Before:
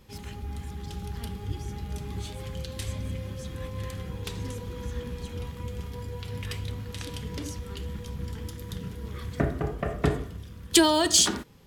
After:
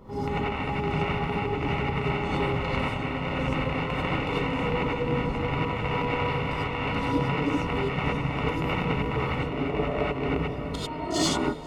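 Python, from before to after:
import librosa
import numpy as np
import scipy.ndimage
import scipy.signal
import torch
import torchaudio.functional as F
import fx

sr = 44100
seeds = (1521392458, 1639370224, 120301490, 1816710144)

p1 = fx.rattle_buzz(x, sr, strikes_db=-33.0, level_db=-14.0)
p2 = scipy.signal.savgol_filter(p1, 65, 4, mode='constant')
p3 = fx.over_compress(p2, sr, threshold_db=-37.0, ratio=-1.0)
p4 = fx.low_shelf(p3, sr, hz=200.0, db=-10.5)
p5 = p4 + fx.echo_diffused(p4, sr, ms=646, feedback_pct=45, wet_db=-10.0, dry=0)
p6 = fx.rev_gated(p5, sr, seeds[0], gate_ms=120, shape='rising', drr_db=-7.5)
y = F.gain(torch.from_numpy(p6), 7.5).numpy()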